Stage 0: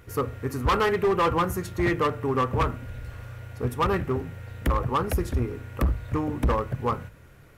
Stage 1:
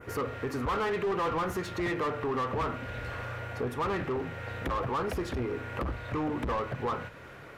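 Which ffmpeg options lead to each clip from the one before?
-filter_complex "[0:a]adynamicequalizer=threshold=0.00562:dfrequency=4000:dqfactor=0.8:tfrequency=4000:tqfactor=0.8:attack=5:release=100:ratio=0.375:range=3:mode=boostabove:tftype=bell,asplit=2[a][b];[b]highpass=f=720:p=1,volume=23dB,asoftclip=type=tanh:threshold=-13dB[c];[a][c]amix=inputs=2:normalize=0,lowpass=f=1.2k:p=1,volume=-6dB,alimiter=limit=-22dB:level=0:latency=1:release=360,volume=-3dB"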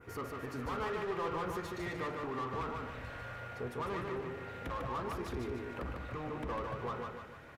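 -af "flanger=delay=0.8:depth=1.2:regen=-76:speed=0.38:shape=triangular,aecho=1:1:149|298|447|596|745|894:0.631|0.284|0.128|0.0575|0.0259|0.0116,volume=-4dB"

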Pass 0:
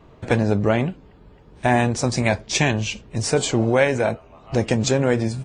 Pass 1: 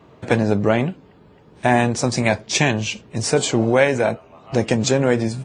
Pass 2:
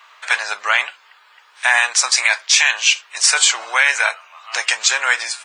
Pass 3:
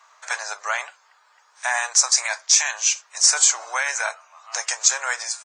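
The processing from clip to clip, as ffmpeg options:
-af "highpass=110,volume=2dB"
-af "highpass=f=1.2k:w=0.5412,highpass=f=1.2k:w=1.3066,alimiter=level_in=14dB:limit=-1dB:release=50:level=0:latency=1,volume=-1dB"
-af "firequalizer=gain_entry='entry(170,0);entry(240,-23);entry(350,-4);entry(620,3);entry(2900,-10);entry(6300,9);entry(11000,-6)':delay=0.05:min_phase=1,volume=-6dB"

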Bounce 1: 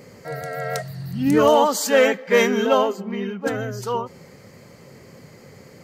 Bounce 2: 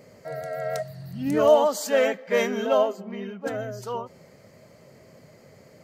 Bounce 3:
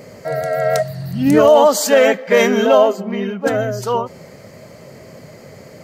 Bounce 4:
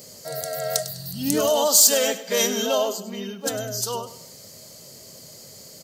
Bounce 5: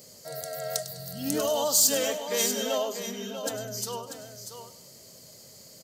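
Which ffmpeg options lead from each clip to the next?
-af "equalizer=f=630:w=6.8:g=12.5,volume=-7.5dB"
-af "alimiter=level_in=13.5dB:limit=-1dB:release=50:level=0:latency=1,volume=-1dB"
-af "aecho=1:1:101|202|303:0.188|0.0678|0.0244,aexciter=amount=6.4:drive=7:freq=3.2k,volume=-11.5dB"
-af "aecho=1:1:641:0.355,volume=-6.5dB"

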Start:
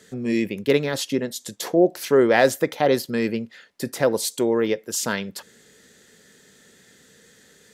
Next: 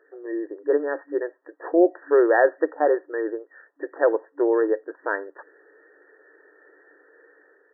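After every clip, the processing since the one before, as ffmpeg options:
-af "afftfilt=real='re*between(b*sr/4096,290,1900)':imag='im*between(b*sr/4096,290,1900)':win_size=4096:overlap=0.75,dynaudnorm=f=570:g=3:m=7.5dB,volume=-4dB"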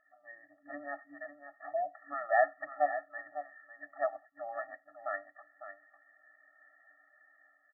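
-af "aecho=1:1:552:0.282,afftfilt=real='re*eq(mod(floor(b*sr/1024/280),2),0)':imag='im*eq(mod(floor(b*sr/1024/280),2),0)':win_size=1024:overlap=0.75,volume=-5dB"

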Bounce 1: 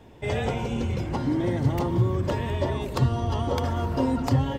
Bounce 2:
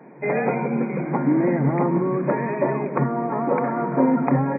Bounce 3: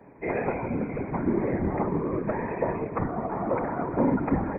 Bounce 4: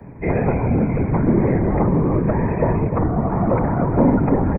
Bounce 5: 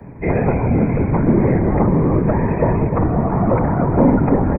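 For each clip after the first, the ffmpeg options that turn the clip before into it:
-af "afftfilt=real='re*between(b*sr/4096,130,2500)':imag='im*between(b*sr/4096,130,2500)':win_size=4096:overlap=0.75,volume=6.5dB"
-af "afftfilt=real='hypot(re,im)*cos(2*PI*random(0))':imag='hypot(re,im)*sin(2*PI*random(1))':win_size=512:overlap=0.75"
-filter_complex "[0:a]acrossover=split=170|410|1200[a][b][c][d];[a]aeval=exprs='0.0794*sin(PI/2*3.98*val(0)/0.0794)':c=same[e];[c]aecho=1:1:301:0.501[f];[d]alimiter=level_in=8.5dB:limit=-24dB:level=0:latency=1:release=481,volume=-8.5dB[g];[e][b][f][g]amix=inputs=4:normalize=0,volume=6dB"
-af "aecho=1:1:519:0.224,volume=2dB"

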